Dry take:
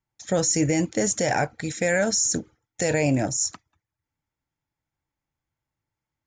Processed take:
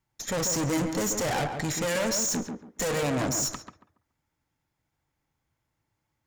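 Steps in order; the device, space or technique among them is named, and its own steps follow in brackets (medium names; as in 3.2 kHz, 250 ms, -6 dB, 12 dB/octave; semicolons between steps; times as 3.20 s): 2.35–3.03 s: comb 4.3 ms, depth 40%; rockabilly slapback (valve stage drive 35 dB, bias 0.6; tape echo 139 ms, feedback 29%, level -3.5 dB, low-pass 1.4 kHz); trim +8.5 dB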